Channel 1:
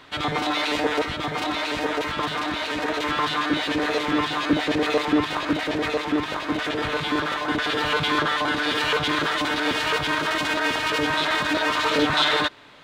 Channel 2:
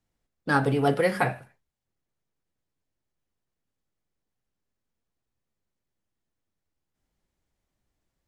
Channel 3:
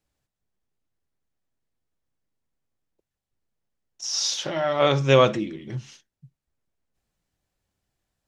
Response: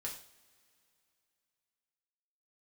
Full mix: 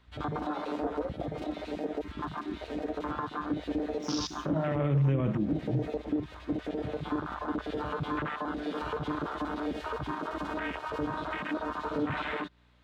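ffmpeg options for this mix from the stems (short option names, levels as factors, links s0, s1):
-filter_complex "[0:a]aeval=exprs='val(0)+0.00708*(sin(2*PI*60*n/s)+sin(2*PI*2*60*n/s)/2+sin(2*PI*3*60*n/s)/3+sin(2*PI*4*60*n/s)/4+sin(2*PI*5*60*n/s)/5)':c=same,volume=0.668[s0];[1:a]highpass=f=400:w=0.5412,highpass=f=400:w=1.3066,equalizer=f=620:t=o:w=0.95:g=12,volume=0.168[s1];[2:a]lowshelf=f=110:g=10.5,aeval=exprs='sgn(val(0))*max(abs(val(0))-0.00531,0)':c=same,volume=1.12,asplit=2[s2][s3];[s3]volume=0.562[s4];[3:a]atrim=start_sample=2205[s5];[s4][s5]afir=irnorm=-1:irlink=0[s6];[s0][s1][s2][s6]amix=inputs=4:normalize=0,afwtdn=0.0631,acrossover=split=270[s7][s8];[s8]acompressor=threshold=0.0224:ratio=4[s9];[s7][s9]amix=inputs=2:normalize=0,alimiter=limit=0.1:level=0:latency=1:release=62"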